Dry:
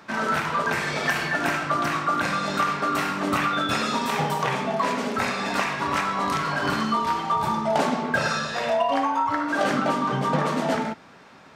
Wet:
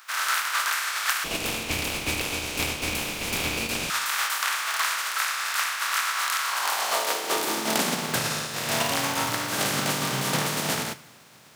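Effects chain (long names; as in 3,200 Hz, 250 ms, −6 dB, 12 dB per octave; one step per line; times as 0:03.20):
compressing power law on the bin magnitudes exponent 0.31
high-pass filter sweep 1,300 Hz → 120 Hz, 0:06.40–0:08.22
0:01.24–0:03.90: ring modulation 1,100 Hz
dense smooth reverb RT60 1.2 s, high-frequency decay 0.9×, DRR 16.5 dB
level −3.5 dB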